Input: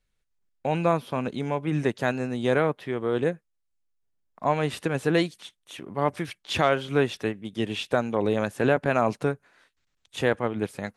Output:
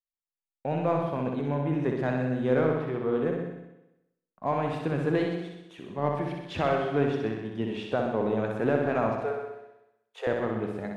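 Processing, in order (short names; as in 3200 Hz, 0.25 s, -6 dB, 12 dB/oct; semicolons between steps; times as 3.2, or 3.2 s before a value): LPF 1200 Hz 6 dB/oct; expander -53 dBFS; 9.09–10.27 elliptic high-pass 430 Hz; in parallel at -11 dB: soft clip -26 dBFS, distortion -6 dB; on the sum: flange 0.88 Hz, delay 9.2 ms, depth 6.1 ms, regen +79%; flutter echo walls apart 10.8 m, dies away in 0.86 s; on a send at -10 dB: reverb RT60 0.80 s, pre-delay 88 ms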